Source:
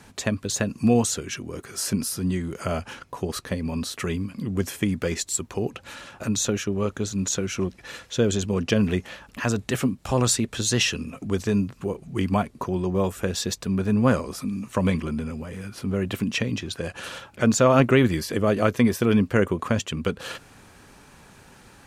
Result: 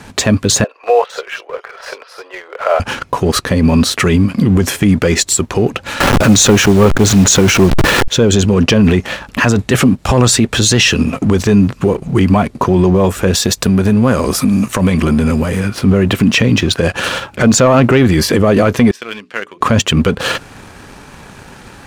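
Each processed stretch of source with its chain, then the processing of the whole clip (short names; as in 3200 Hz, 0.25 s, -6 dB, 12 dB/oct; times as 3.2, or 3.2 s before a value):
0.64–2.8 steep high-pass 480 Hz 48 dB/oct + air absorption 350 m + bands offset in time lows, highs 50 ms, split 3300 Hz
6–8.08 level-crossing sampler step -36 dBFS + hard clip -20 dBFS + fast leveller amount 70%
13.33–15.6 high shelf 8100 Hz +11 dB + compressor, threshold -27 dBFS
18.91–19.61 BPF 130–3300 Hz + differentiator + notches 60/120/180/240/300/360/420 Hz
whole clip: high shelf 6400 Hz -7 dB; sample leveller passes 1; maximiser +17 dB; gain -1 dB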